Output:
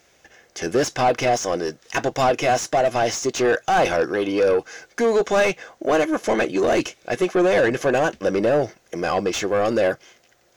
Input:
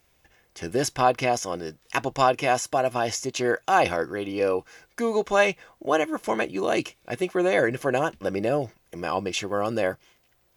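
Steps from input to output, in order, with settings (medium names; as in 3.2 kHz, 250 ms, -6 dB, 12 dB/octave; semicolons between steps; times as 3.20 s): fifteen-band graphic EQ 1 kHz -8 dB, 2.5 kHz -3 dB, 6.3 kHz +9 dB; overdrive pedal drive 23 dB, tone 1.4 kHz, clips at -8.5 dBFS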